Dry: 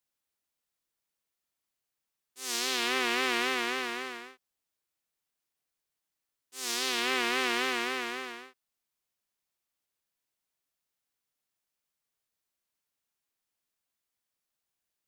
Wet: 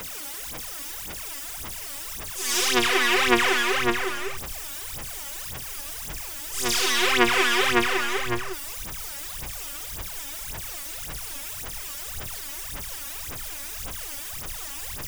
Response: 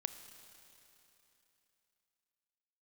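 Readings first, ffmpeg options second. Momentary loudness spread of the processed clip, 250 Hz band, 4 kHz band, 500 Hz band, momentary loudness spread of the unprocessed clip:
13 LU, +10.0 dB, +8.0 dB, +9.5 dB, 13 LU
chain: -af "aeval=exprs='val(0)+0.5*0.0168*sgn(val(0))':channel_layout=same,bandreject=frequency=4200:width=7.8,asubboost=boost=3.5:cutoff=120,aphaser=in_gain=1:out_gain=1:delay=3.6:decay=0.79:speed=1.8:type=sinusoidal,volume=3dB"

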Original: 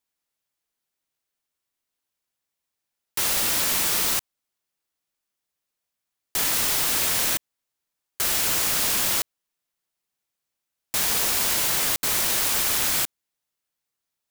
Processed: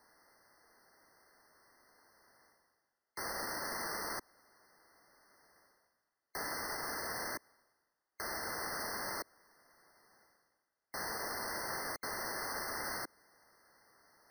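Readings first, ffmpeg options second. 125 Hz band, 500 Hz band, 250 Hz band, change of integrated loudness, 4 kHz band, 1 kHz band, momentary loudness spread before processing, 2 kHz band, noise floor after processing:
−15.0 dB, −8.0 dB, −11.0 dB, −18.5 dB, −19.5 dB, −8.0 dB, 6 LU, −10.5 dB, below −85 dBFS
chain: -filter_complex "[0:a]bass=frequency=250:gain=-9,treble=frequency=4000:gain=-13,acrossover=split=380|4700[link_01][link_02][link_03];[link_01]acompressor=threshold=-49dB:ratio=4[link_04];[link_02]acompressor=threshold=-36dB:ratio=4[link_05];[link_03]acompressor=threshold=-38dB:ratio=4[link_06];[link_04][link_05][link_06]amix=inputs=3:normalize=0,alimiter=level_in=8.5dB:limit=-24dB:level=0:latency=1:release=36,volume=-8.5dB,areverse,acompressor=mode=upward:threshold=-50dB:ratio=2.5,areverse,afftfilt=real='re*eq(mod(floor(b*sr/1024/2100),2),0)':imag='im*eq(mod(floor(b*sr/1024/2100),2),0)':win_size=1024:overlap=0.75,volume=4dB"

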